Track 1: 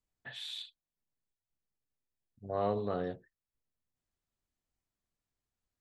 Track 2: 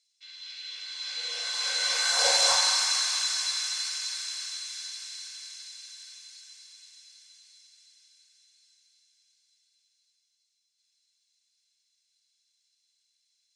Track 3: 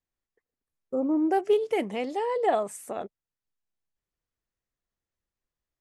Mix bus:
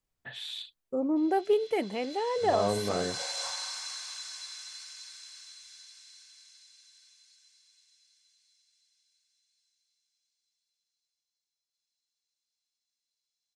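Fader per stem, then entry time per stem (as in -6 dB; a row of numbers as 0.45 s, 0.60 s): +3.0 dB, -13.0 dB, -2.5 dB; 0.00 s, 0.95 s, 0.00 s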